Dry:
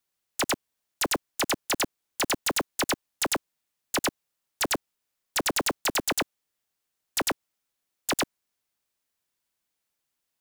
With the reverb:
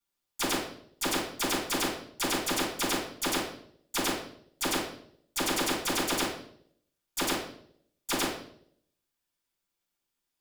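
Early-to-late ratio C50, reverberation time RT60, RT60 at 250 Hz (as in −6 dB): 3.5 dB, 0.65 s, 0.75 s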